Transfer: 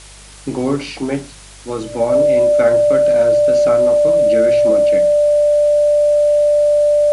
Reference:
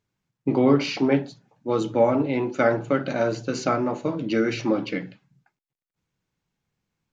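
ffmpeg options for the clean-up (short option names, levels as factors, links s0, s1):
-af "bandreject=f=49.8:t=h:w=4,bandreject=f=99.6:t=h:w=4,bandreject=f=149.4:t=h:w=4,bandreject=f=199.2:t=h:w=4,bandreject=f=590:w=30,afwtdn=0.013"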